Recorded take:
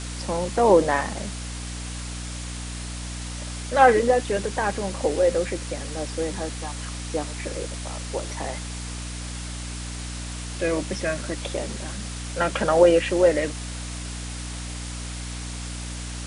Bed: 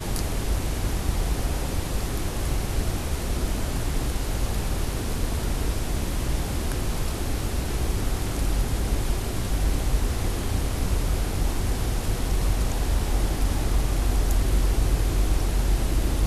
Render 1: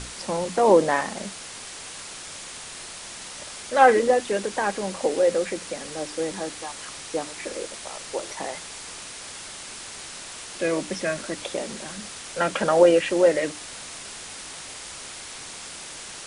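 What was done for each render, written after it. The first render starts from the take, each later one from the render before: hum notches 60/120/180/240/300 Hz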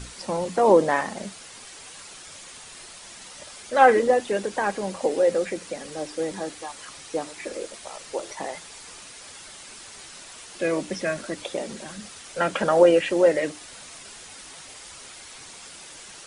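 noise reduction 7 dB, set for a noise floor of -39 dBFS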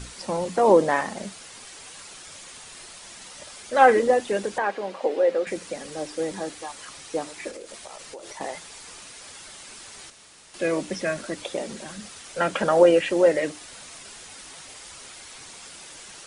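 4.58–5.47 s: three-band isolator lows -21 dB, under 260 Hz, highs -17 dB, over 4.2 kHz; 7.50–8.41 s: compression 10:1, threshold -35 dBFS; 10.10–10.54 s: room tone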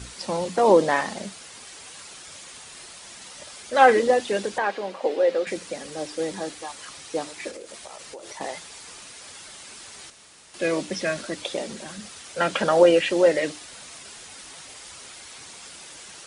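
high-pass 40 Hz; dynamic bell 4 kHz, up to +6 dB, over -44 dBFS, Q 0.99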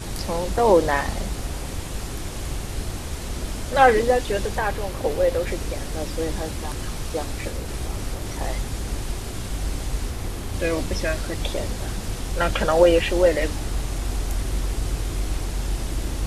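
add bed -3.5 dB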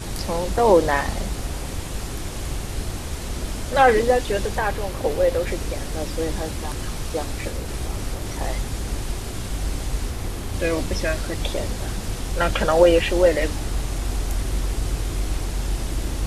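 trim +1 dB; peak limiter -3 dBFS, peak gain reduction 2.5 dB

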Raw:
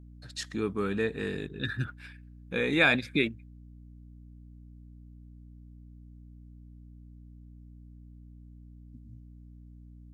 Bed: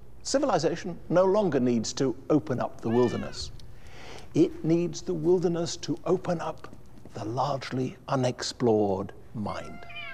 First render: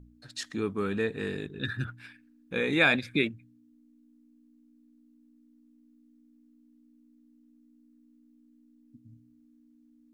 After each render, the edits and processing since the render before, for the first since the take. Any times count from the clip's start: de-hum 60 Hz, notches 3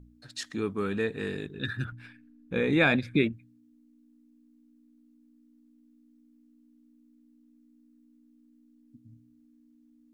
1.92–3.33 s: tilt EQ -2 dB/octave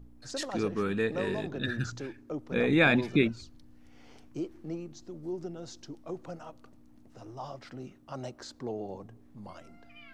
add bed -13.5 dB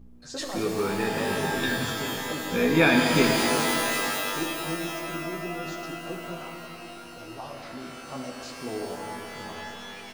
doubling 12 ms -4.5 dB; pitch-shifted reverb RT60 3.3 s, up +12 st, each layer -2 dB, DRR 1.5 dB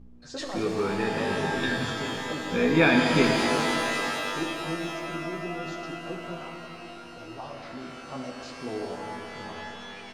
distance through air 69 m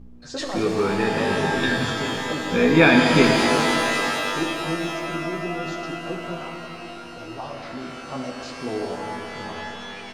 trim +5.5 dB

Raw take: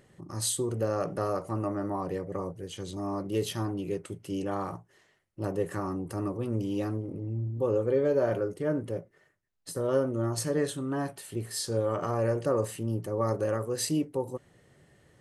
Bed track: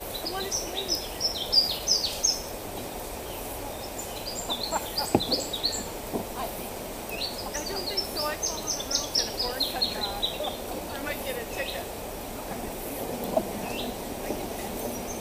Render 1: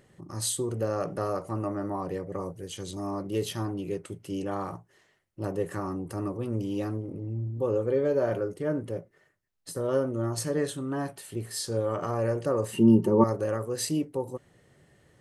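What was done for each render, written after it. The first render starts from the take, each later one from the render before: 2.40–3.11 s: treble shelf 4.8 kHz +6.5 dB; 12.73–13.24 s: small resonant body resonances 220/360/900/2800 Hz, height 18 dB, ringing for 50 ms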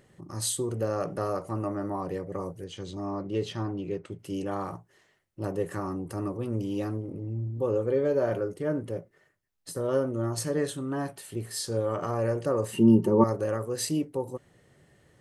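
2.64–4.19 s: distance through air 110 m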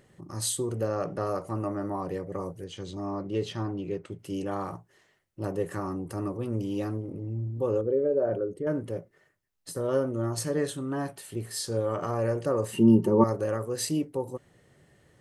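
0.87–1.27 s: distance through air 50 m; 7.81–8.67 s: resonances exaggerated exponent 1.5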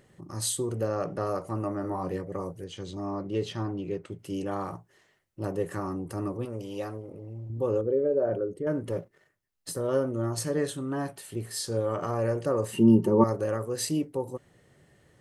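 1.82–2.22 s: doubling 22 ms -6 dB; 6.45–7.50 s: resonant low shelf 390 Hz -7 dB, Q 1.5; 8.87–9.76 s: waveshaping leveller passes 1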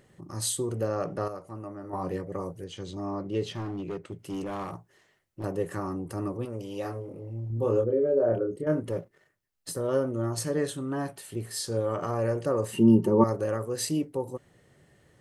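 1.28–1.93 s: gain -8.5 dB; 3.53–5.44 s: hard clipper -29.5 dBFS; 6.82–8.80 s: doubling 26 ms -3 dB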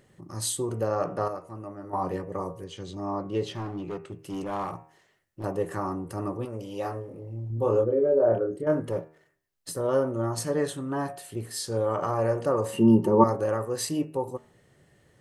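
dynamic bell 880 Hz, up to +7 dB, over -43 dBFS, Q 1.2; de-hum 78.77 Hz, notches 36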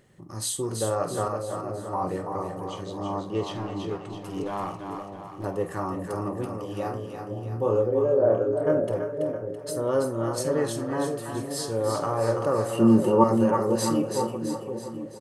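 doubling 49 ms -13 dB; two-band feedback delay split 640 Hz, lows 516 ms, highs 331 ms, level -5.5 dB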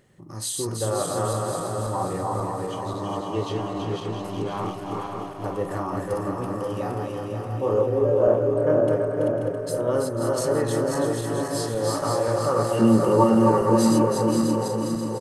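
backward echo that repeats 267 ms, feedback 68%, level -3 dB; delay 497 ms -12.5 dB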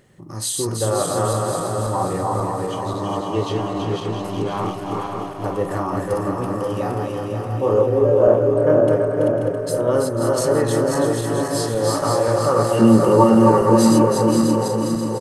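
trim +5 dB; peak limiter -2 dBFS, peak gain reduction 0.5 dB

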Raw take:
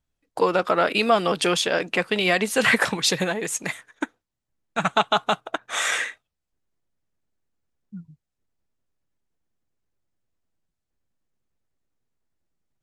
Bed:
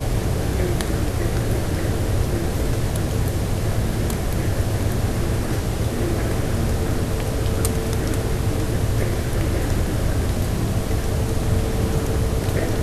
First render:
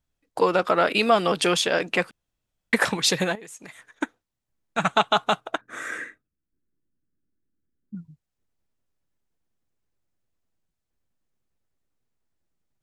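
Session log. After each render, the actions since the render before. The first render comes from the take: 2.11–2.73 s: room tone; 3.35–3.89 s: compression, threshold -40 dBFS; 5.61–7.95 s: FFT filter 110 Hz 0 dB, 300 Hz +7 dB, 800 Hz -17 dB, 1.6 kHz -4 dB, 3.1 kHz -22 dB, 11 kHz -13 dB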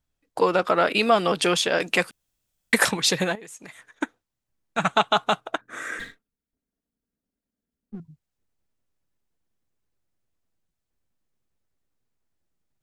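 1.80–2.91 s: treble shelf 4.4 kHz +12 dB; 5.99–8.00 s: comb filter that takes the minimum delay 4.3 ms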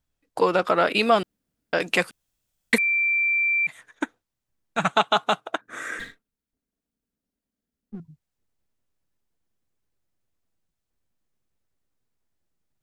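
1.23–1.73 s: room tone; 2.78–3.67 s: bleep 2.35 kHz -19 dBFS; 4.91–5.68 s: high-pass 160 Hz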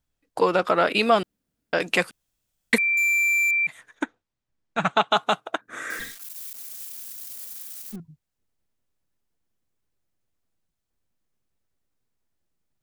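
2.97–3.51 s: power-law waveshaper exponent 0.5; 4.03–5.11 s: distance through air 73 m; 5.90–7.96 s: zero-crossing glitches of -30 dBFS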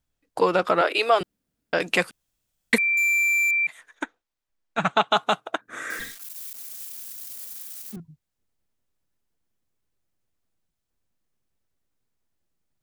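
0.81–1.21 s: Chebyshev high-pass 330 Hz, order 4; 3.23–4.78 s: peaking EQ 120 Hz -13 dB 2.4 oct; 7.56–7.97 s: high-pass 150 Hz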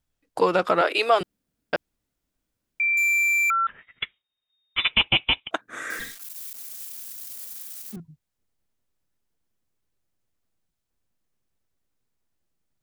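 1.76–2.80 s: room tone; 3.50–5.51 s: frequency inversion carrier 3.7 kHz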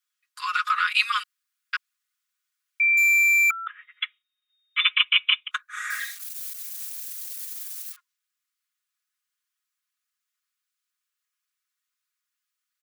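steep high-pass 1.1 kHz 96 dB/octave; comb 4.8 ms, depth 90%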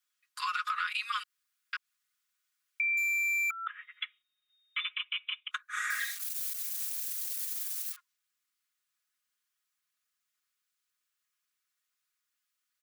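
compression 6:1, threshold -29 dBFS, peak gain reduction 14.5 dB; peak limiter -22 dBFS, peak gain reduction 6 dB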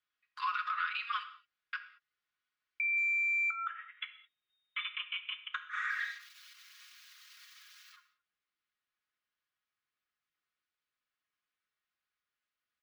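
distance through air 260 m; gated-style reverb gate 240 ms falling, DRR 8 dB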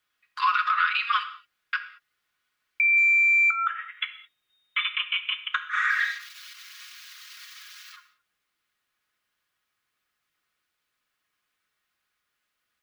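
trim +11.5 dB

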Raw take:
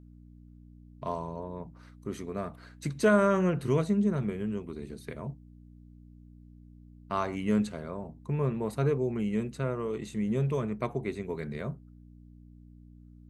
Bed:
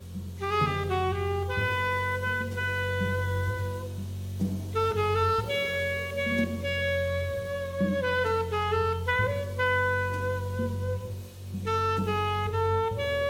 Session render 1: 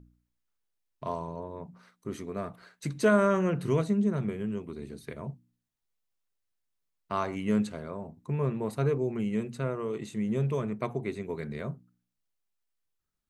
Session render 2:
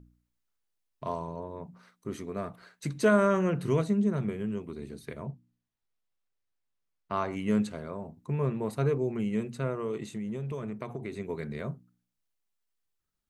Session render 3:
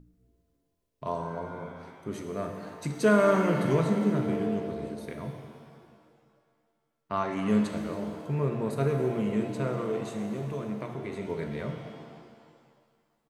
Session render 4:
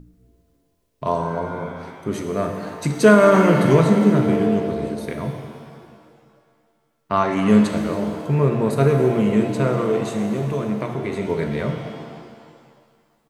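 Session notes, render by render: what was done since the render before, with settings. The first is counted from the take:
de-hum 60 Hz, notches 5
5.23–7.31 s: treble shelf 6.2 kHz -11 dB; 10.12–11.16 s: compression 10:1, threshold -31 dBFS
frequency-shifting echo 272 ms, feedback 50%, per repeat +110 Hz, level -19.5 dB; pitch-shifted reverb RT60 1.9 s, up +7 st, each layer -8 dB, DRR 4 dB
trim +10.5 dB; peak limiter -2 dBFS, peak gain reduction 3 dB

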